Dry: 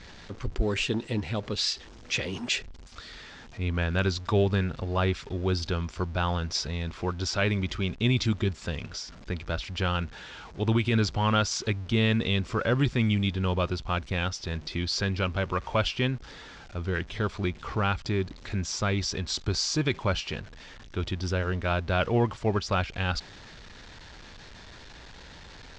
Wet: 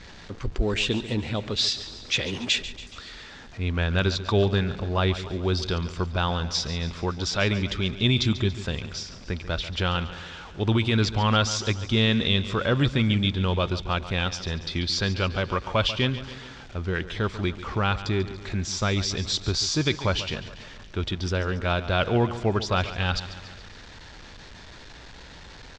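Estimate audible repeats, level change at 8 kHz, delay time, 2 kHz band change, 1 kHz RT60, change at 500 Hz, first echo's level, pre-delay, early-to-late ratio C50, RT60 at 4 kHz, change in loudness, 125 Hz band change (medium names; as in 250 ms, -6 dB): 5, +2.5 dB, 141 ms, +2.5 dB, no reverb, +2.5 dB, -14.0 dB, no reverb, no reverb, no reverb, +3.0 dB, +2.5 dB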